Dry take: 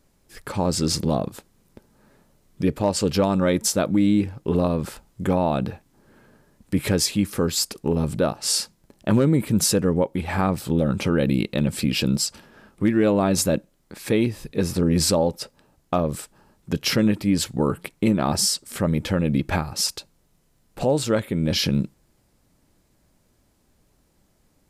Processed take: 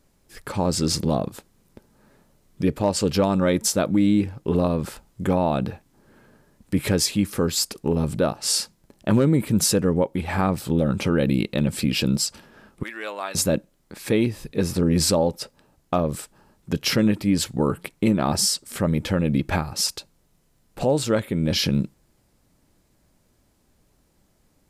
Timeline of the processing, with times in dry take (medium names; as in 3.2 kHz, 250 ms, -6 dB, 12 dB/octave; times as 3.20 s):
12.83–13.35 s: high-pass 1.1 kHz